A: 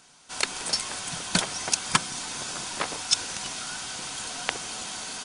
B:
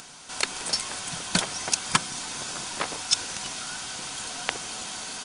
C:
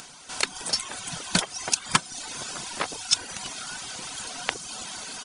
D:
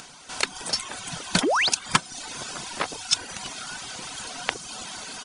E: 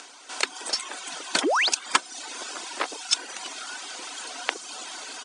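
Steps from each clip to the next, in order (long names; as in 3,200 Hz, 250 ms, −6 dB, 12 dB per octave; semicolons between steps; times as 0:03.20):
upward compression, threshold −36 dBFS
reverb reduction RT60 0.85 s; level +1 dB
high-shelf EQ 6,500 Hz −5 dB; sound drawn into the spectrogram rise, 0:01.43–0:01.69, 230–5,400 Hz −23 dBFS; level +1.5 dB
elliptic band-pass filter 300–8,800 Hz, stop band 40 dB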